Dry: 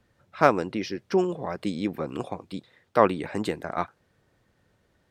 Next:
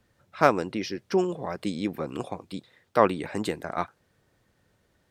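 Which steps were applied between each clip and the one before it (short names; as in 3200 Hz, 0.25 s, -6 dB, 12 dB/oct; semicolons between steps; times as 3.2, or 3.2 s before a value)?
high shelf 5200 Hz +5.5 dB; gain -1 dB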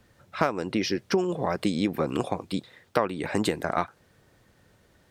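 compressor 12:1, threshold -27 dBFS, peak gain reduction 15.5 dB; gain +7 dB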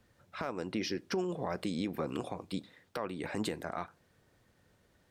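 limiter -16 dBFS, peak gain reduction 9.5 dB; on a send at -19.5 dB: reverb RT60 0.30 s, pre-delay 4 ms; on the sum: gain -7.5 dB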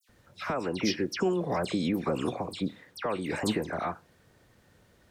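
dispersion lows, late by 89 ms, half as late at 2700 Hz; gain +6.5 dB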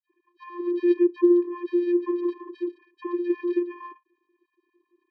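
sine-wave speech; vocoder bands 8, square 350 Hz; gain +7 dB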